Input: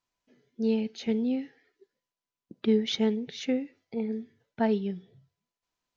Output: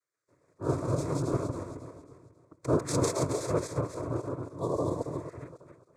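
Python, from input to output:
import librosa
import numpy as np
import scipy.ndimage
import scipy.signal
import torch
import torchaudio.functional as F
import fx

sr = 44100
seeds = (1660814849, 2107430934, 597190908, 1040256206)

y = fx.reverse_delay_fb(x, sr, ms=136, feedback_pct=62, wet_db=0)
y = fx.noise_vocoder(y, sr, seeds[0], bands=4)
y = fx.peak_eq(y, sr, hz=5600.0, db=-3.0, octaves=0.5)
y = fx.fixed_phaser(y, sr, hz=800.0, stages=6)
y = fx.spec_repair(y, sr, seeds[1], start_s=4.56, length_s=0.8, low_hz=1200.0, high_hz=3300.0, source='both')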